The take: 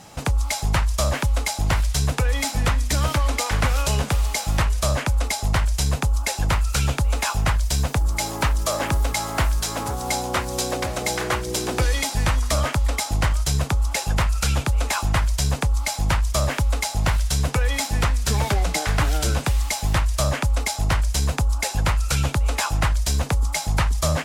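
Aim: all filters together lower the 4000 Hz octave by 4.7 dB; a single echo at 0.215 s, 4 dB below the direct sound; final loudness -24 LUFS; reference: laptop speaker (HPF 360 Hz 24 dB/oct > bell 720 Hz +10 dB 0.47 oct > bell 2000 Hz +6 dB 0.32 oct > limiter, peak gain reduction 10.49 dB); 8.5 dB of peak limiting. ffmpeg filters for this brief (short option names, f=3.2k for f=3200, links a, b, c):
-af "equalizer=f=4k:t=o:g=-6.5,alimiter=limit=-18.5dB:level=0:latency=1,highpass=f=360:w=0.5412,highpass=f=360:w=1.3066,equalizer=f=720:t=o:w=0.47:g=10,equalizer=f=2k:t=o:w=0.32:g=6,aecho=1:1:215:0.631,volume=7dB,alimiter=limit=-14.5dB:level=0:latency=1"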